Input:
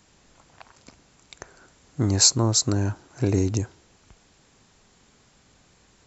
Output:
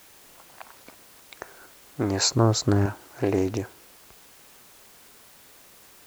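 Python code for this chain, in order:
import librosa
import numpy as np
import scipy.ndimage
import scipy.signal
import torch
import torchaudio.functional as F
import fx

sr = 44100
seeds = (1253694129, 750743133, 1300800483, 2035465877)

p1 = fx.bass_treble(x, sr, bass_db=-12, treble_db=-14)
p2 = fx.quant_dither(p1, sr, seeds[0], bits=8, dither='triangular')
p3 = p1 + F.gain(torch.from_numpy(p2), -4.5).numpy()
p4 = fx.low_shelf(p3, sr, hz=190.0, db=12.0, at=(2.31, 2.86))
y = fx.doppler_dist(p4, sr, depth_ms=0.27)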